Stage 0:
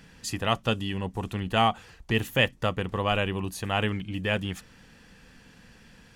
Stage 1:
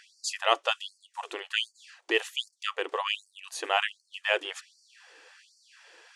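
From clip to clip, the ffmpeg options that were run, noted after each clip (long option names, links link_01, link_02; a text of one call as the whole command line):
ffmpeg -i in.wav -af "lowpass=frequency=9200:width=0.5412,lowpass=frequency=9200:width=1.3066,afftfilt=real='re*gte(b*sr/1024,300*pow(4400/300,0.5+0.5*sin(2*PI*1.3*pts/sr)))':imag='im*gte(b*sr/1024,300*pow(4400/300,0.5+0.5*sin(2*PI*1.3*pts/sr)))':win_size=1024:overlap=0.75,volume=2.5dB" out.wav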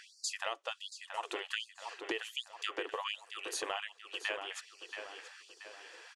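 ffmpeg -i in.wav -filter_complex "[0:a]acompressor=threshold=-35dB:ratio=16,asplit=2[link_01][link_02];[link_02]adelay=679,lowpass=frequency=3300:poles=1,volume=-6.5dB,asplit=2[link_03][link_04];[link_04]adelay=679,lowpass=frequency=3300:poles=1,volume=0.49,asplit=2[link_05][link_06];[link_06]adelay=679,lowpass=frequency=3300:poles=1,volume=0.49,asplit=2[link_07][link_08];[link_08]adelay=679,lowpass=frequency=3300:poles=1,volume=0.49,asplit=2[link_09][link_10];[link_10]adelay=679,lowpass=frequency=3300:poles=1,volume=0.49,asplit=2[link_11][link_12];[link_12]adelay=679,lowpass=frequency=3300:poles=1,volume=0.49[link_13];[link_03][link_05][link_07][link_09][link_11][link_13]amix=inputs=6:normalize=0[link_14];[link_01][link_14]amix=inputs=2:normalize=0,volume=1dB" out.wav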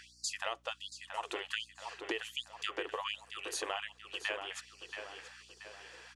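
ffmpeg -i in.wav -af "aeval=exprs='val(0)+0.000398*(sin(2*PI*60*n/s)+sin(2*PI*2*60*n/s)/2+sin(2*PI*3*60*n/s)/3+sin(2*PI*4*60*n/s)/4+sin(2*PI*5*60*n/s)/5)':channel_layout=same" out.wav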